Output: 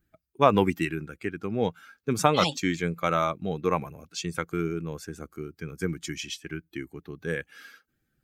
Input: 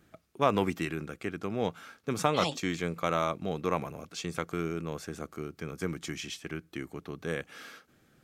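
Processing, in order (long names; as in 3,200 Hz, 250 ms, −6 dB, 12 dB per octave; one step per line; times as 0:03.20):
spectral dynamics exaggerated over time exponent 1.5
level +7.5 dB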